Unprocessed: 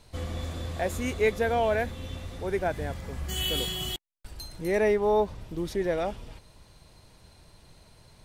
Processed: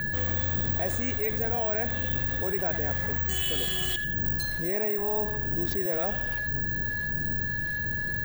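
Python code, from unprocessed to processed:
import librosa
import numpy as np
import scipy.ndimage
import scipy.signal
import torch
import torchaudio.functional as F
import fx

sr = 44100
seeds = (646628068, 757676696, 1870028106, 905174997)

p1 = fx.dmg_wind(x, sr, seeds[0], corner_hz=140.0, level_db=-38.0)
p2 = (np.kron(p1[::2], np.eye(2)[0]) * 2)[:len(p1)]
p3 = p2 + 10.0 ** (-37.0 / 20.0) * np.sin(2.0 * np.pi * 1700.0 * np.arange(len(p2)) / sr)
p4 = fx.rider(p3, sr, range_db=4, speed_s=0.5)
p5 = p4 + fx.echo_feedback(p4, sr, ms=85, feedback_pct=58, wet_db=-19.0, dry=0)
p6 = fx.env_flatten(p5, sr, amount_pct=70)
y = p6 * librosa.db_to_amplitude(-6.5)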